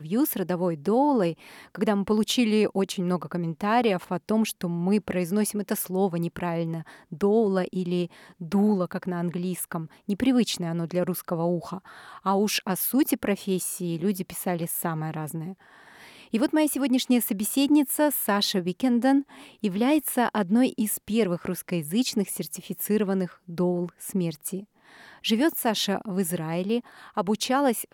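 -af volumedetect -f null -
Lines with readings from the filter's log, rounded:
mean_volume: -25.8 dB
max_volume: -12.0 dB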